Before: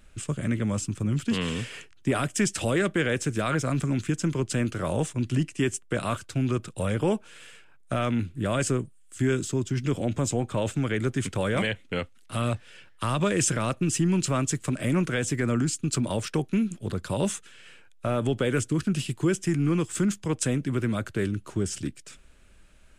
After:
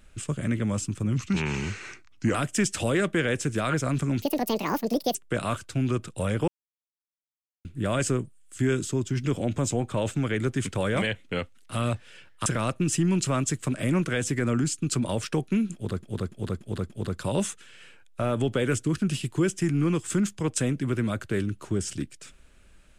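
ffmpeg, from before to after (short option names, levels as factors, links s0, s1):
-filter_complex "[0:a]asplit=12[s0][s1][s2][s3][s4][s5][s6][s7][s8][s9][s10][s11];[s0]atrim=end=1.174[s12];[s1]atrim=start=1.17:end=2.16,asetpts=PTS-STARTPTS,asetrate=37044,aresample=44100[s13];[s2]atrim=start=2.156:end=4.034[s14];[s3]atrim=start=4.03:end=5.75,asetpts=PTS-STARTPTS,asetrate=81585,aresample=44100,atrim=end_sample=41001,asetpts=PTS-STARTPTS[s15];[s4]atrim=start=5.746:end=7.08,asetpts=PTS-STARTPTS,afade=t=out:st=1.33:d=0.004:c=hsin[s16];[s5]atrim=start=7.08:end=8.25,asetpts=PTS-STARTPTS,volume=0[s17];[s6]atrim=start=8.25:end=13.062,asetpts=PTS-STARTPTS,afade=t=in:d=0.004:c=hsin[s18];[s7]atrim=start=13.468:end=17.042[s19];[s8]atrim=start=16.748:end=17.042[s20];[s9]atrim=start=16.748:end=17.042[s21];[s10]atrim=start=16.748:end=17.042[s22];[s11]atrim=start=16.748[s23];[s12][s13]acrossfade=d=0.004:c1=hsin:c2=hsin[s24];[s24][s14]acrossfade=d=0.004:c1=hsin:c2=hsin[s25];[s25][s15]acrossfade=d=0.004:c1=hsin:c2=hsin[s26];[s16][s17][s18]concat=n=3:v=0:a=1[s27];[s26][s27]acrossfade=d=0.004:c1=hsin:c2=hsin[s28];[s28][s19]acrossfade=d=0.004:c1=hsin:c2=hsin[s29];[s29][s20]acrossfade=d=0.004:c1=hsin:c2=hsin[s30];[s30][s21]acrossfade=d=0.004:c1=hsin:c2=hsin[s31];[s31][s22]acrossfade=d=0.004:c1=hsin:c2=hsin[s32];[s32][s23]acrossfade=d=0.004:c1=hsin:c2=hsin"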